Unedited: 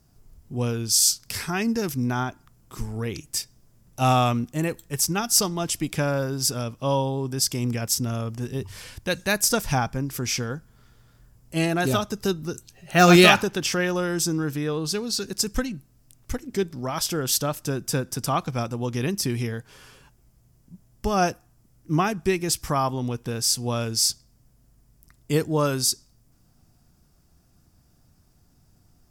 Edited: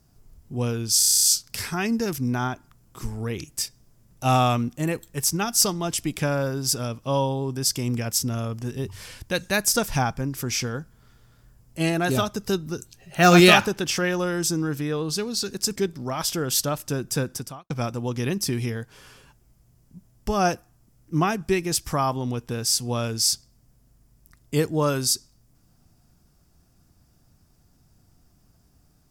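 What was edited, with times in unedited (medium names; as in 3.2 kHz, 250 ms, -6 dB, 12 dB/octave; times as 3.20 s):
0.99 s: stutter 0.03 s, 9 plays
15.52–16.53 s: delete
18.11–18.47 s: fade out quadratic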